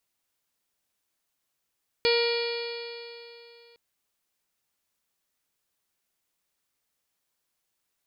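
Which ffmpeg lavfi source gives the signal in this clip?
-f lavfi -i "aevalsrc='0.0891*pow(10,-3*t/2.91)*sin(2*PI*469.26*t)+0.0211*pow(10,-3*t/2.91)*sin(2*PI*940.06*t)+0.0141*pow(10,-3*t/2.91)*sin(2*PI*1413.95*t)+0.0178*pow(10,-3*t/2.91)*sin(2*PI*1892.44*t)+0.0422*pow(10,-3*t/2.91)*sin(2*PI*2377.03*t)+0.0178*pow(10,-3*t/2.91)*sin(2*PI*2869.18*t)+0.0237*pow(10,-3*t/2.91)*sin(2*PI*3370.32*t)+0.0133*pow(10,-3*t/2.91)*sin(2*PI*3881.82*t)+0.0501*pow(10,-3*t/2.91)*sin(2*PI*4405.03*t)+0.0158*pow(10,-3*t/2.91)*sin(2*PI*4941.22*t)':d=1.71:s=44100"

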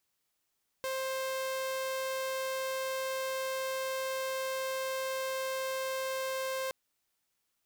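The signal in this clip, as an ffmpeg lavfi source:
-f lavfi -i "aevalsrc='0.0316*(2*mod(527*t,1)-1)':d=5.87:s=44100"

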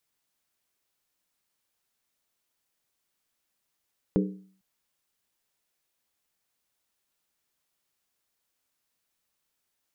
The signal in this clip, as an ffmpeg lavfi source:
-f lavfi -i "aevalsrc='0.106*pow(10,-3*t/0.51)*sin(2*PI*190*t)+0.075*pow(10,-3*t/0.404)*sin(2*PI*302.9*t)+0.0531*pow(10,-3*t/0.349)*sin(2*PI*405.8*t)+0.0376*pow(10,-3*t/0.337)*sin(2*PI*436.2*t)+0.0266*pow(10,-3*t/0.313)*sin(2*PI*504.1*t)':d=0.45:s=44100"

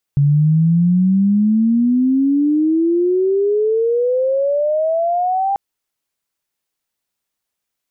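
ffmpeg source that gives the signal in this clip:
-f lavfi -i "aevalsrc='pow(10,(-9.5-5*t/5.39)/20)*sin(2*PI*140*5.39/log(800/140)*(exp(log(800/140)*t/5.39)-1))':d=5.39:s=44100"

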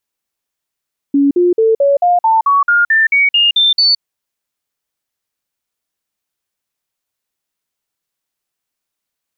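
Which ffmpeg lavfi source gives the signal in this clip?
-f lavfi -i "aevalsrc='0.422*clip(min(mod(t,0.22),0.17-mod(t,0.22))/0.005,0,1)*sin(2*PI*281*pow(2,floor(t/0.22)/3)*mod(t,0.22))':d=2.86:s=44100"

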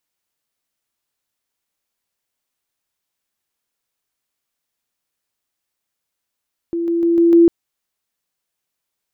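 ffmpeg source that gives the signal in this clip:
-f lavfi -i "aevalsrc='pow(10,(-18+3*floor(t/0.15))/20)*sin(2*PI*338*t)':d=0.75:s=44100"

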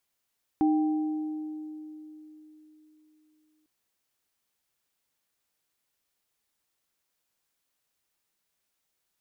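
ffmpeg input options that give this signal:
-f lavfi -i "aevalsrc='0.106*pow(10,-3*t/3.72)*sin(2*PI*308*t)+0.0376*pow(10,-3*t/1.89)*sin(2*PI*787*t)':d=3.05:s=44100"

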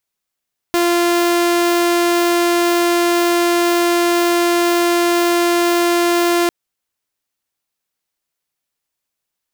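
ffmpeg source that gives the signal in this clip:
-f lavfi -i "aevalsrc='0.316*(2*mod(346*t,1)-1)':d=5.75:s=44100"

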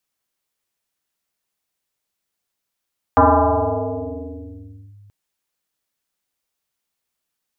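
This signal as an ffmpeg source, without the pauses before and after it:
-f lavfi -i "aevalsrc='0.422*pow(10,-3*t/3.14)*sin(2*PI*102*t+6.2*clip(1-t/1.79,0,1)*sin(2*PI*1.79*102*t))':d=1.93:s=44100"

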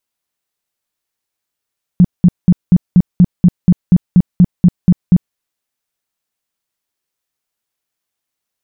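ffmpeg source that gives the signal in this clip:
-f lavfi -i "aevalsrc='0.75*sin(2*PI*178*mod(t,0.24))*lt(mod(t,0.24),8/178)':d=3.36:s=44100"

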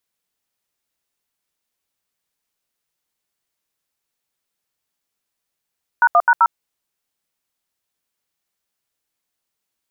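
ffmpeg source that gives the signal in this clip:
-f lavfi -i "aevalsrc='0.266*clip(min(mod(t,0.129),0.053-mod(t,0.129))/0.002,0,1)*(eq(floor(t/0.129),0)*(sin(2*PI*941*mod(t,0.129))+sin(2*PI*1477*mod(t,0.129)))+eq(floor(t/0.129),1)*(sin(2*PI*697*mod(t,0.129))+sin(2*PI*1209*mod(t,0.129)))+eq(floor(t/0.129),2)*(sin(2*PI*941*mod(t,0.129))+sin(2*PI*1477*mod(t,0.129)))+eq(floor(t/0.129),3)*(sin(2*PI*941*mod(t,0.129))+sin(2*PI*1336*mod(t,0.129))))':d=0.516:s=44100"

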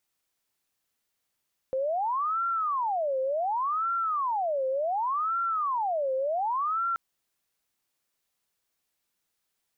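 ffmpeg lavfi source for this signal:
-f lavfi -i "aevalsrc='0.0562*sin(2*PI*(946.5*t-423.5/(2*PI*0.68)*sin(2*PI*0.68*t)))':d=5.23:s=44100"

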